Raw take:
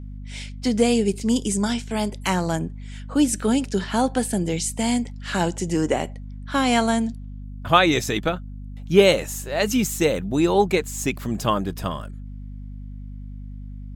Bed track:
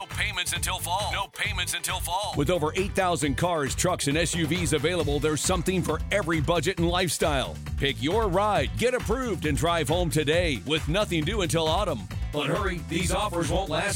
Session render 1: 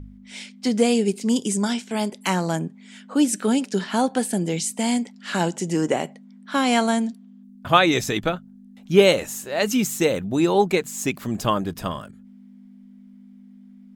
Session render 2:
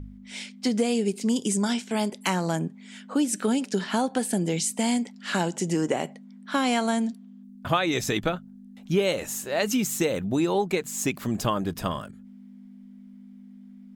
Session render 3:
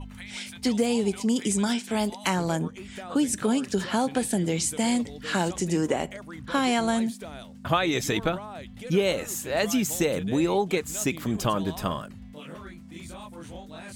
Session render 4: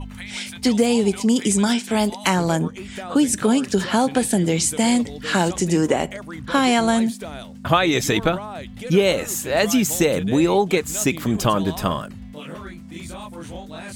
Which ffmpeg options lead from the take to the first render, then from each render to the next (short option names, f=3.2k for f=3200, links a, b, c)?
-af "bandreject=f=50:t=h:w=4,bandreject=f=100:t=h:w=4,bandreject=f=150:t=h:w=4"
-af "acompressor=threshold=-21dB:ratio=4"
-filter_complex "[1:a]volume=-16.5dB[a];[0:a][a]amix=inputs=2:normalize=0"
-af "volume=6.5dB"